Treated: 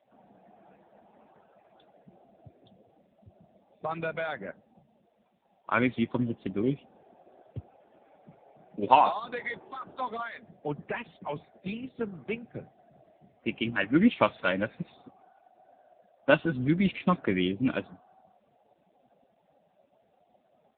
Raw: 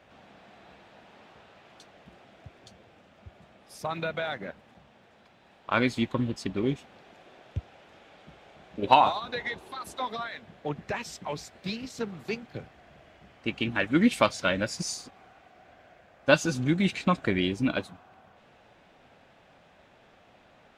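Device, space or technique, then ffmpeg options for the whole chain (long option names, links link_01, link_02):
mobile call with aggressive noise cancelling: -af "highpass=110,afftdn=noise_reduction=20:noise_floor=-50" -ar 8000 -c:a libopencore_amrnb -b:a 7950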